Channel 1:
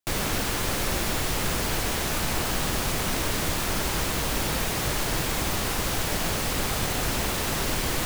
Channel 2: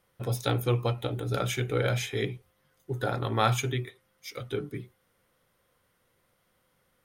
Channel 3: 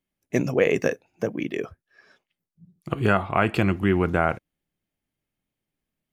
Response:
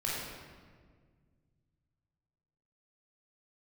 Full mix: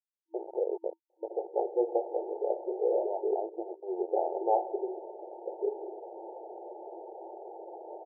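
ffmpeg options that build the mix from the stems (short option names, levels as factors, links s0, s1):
-filter_complex "[0:a]adelay=1800,volume=0.355,asplit=3[s0][s1][s2];[s0]atrim=end=3.28,asetpts=PTS-STARTPTS,afade=t=out:st=3.276:d=0.004:c=hsin[s3];[s1]atrim=start=3.28:end=4.44,asetpts=PTS-STARTPTS,volume=0[s4];[s2]atrim=start=4.44,asetpts=PTS-STARTPTS,afade=t=in:d=0.004:c=hsin[s5];[s3][s4][s5]concat=n=3:v=0:a=1[s6];[1:a]adelay=1100,volume=1.19,asplit=2[s7][s8];[s8]volume=0.112[s9];[2:a]aeval=exprs='val(0)*gte(abs(val(0)),0.0794)':c=same,volume=0.335[s10];[3:a]atrim=start_sample=2205[s11];[s9][s11]afir=irnorm=-1:irlink=0[s12];[s6][s7][s10][s12]amix=inputs=4:normalize=0,afftfilt=real='re*between(b*sr/4096,330,920)':imag='im*between(b*sr/4096,330,920)':win_size=4096:overlap=0.75"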